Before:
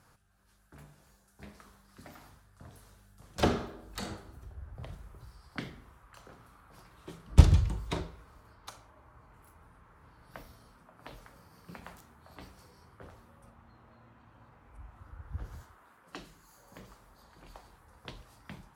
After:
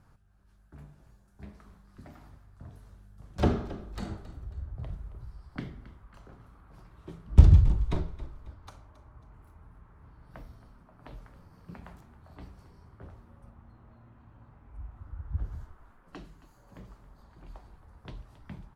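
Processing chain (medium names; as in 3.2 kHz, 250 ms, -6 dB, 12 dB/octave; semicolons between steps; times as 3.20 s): tilt EQ -2.5 dB/octave; band-stop 500 Hz, Q 12; on a send: frequency-shifting echo 272 ms, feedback 41%, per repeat -35 Hz, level -16 dB; on the sum: loudness maximiser -1.5 dB; trim -1 dB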